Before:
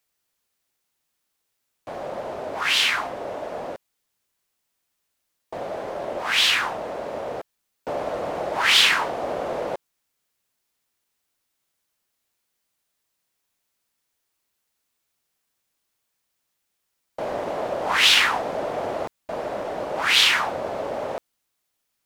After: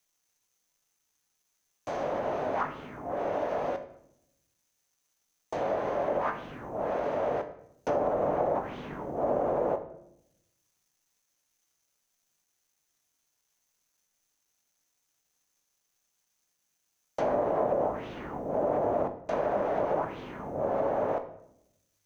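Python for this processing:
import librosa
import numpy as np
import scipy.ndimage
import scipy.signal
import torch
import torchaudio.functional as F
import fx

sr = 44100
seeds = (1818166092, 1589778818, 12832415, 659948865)

y = fx.env_lowpass_down(x, sr, base_hz=340.0, full_db=-21.0)
y = fx.quant_dither(y, sr, seeds[0], bits=12, dither='none')
y = fx.peak_eq(y, sr, hz=6200.0, db=13.0, octaves=0.21)
y = fx.comb_fb(y, sr, f0_hz=50.0, decay_s=0.43, harmonics='all', damping=0.0, mix_pct=60)
y = fx.room_shoebox(y, sr, seeds[1], volume_m3=220.0, walls='mixed', distance_m=0.35)
y = F.gain(torch.from_numpy(y), 5.0).numpy()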